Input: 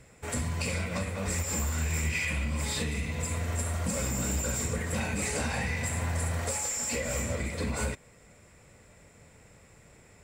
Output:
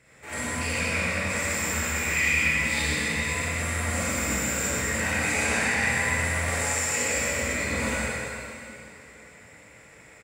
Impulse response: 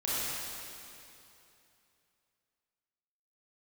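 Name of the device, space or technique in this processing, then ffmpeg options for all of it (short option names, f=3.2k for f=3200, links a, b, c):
PA in a hall: -filter_complex "[0:a]highpass=f=180:p=1,equalizer=f=2k:t=o:w=1:g=8,aecho=1:1:120:0.531[a];[1:a]atrim=start_sample=2205[b];[a][b]afir=irnorm=-1:irlink=0,volume=-4.5dB"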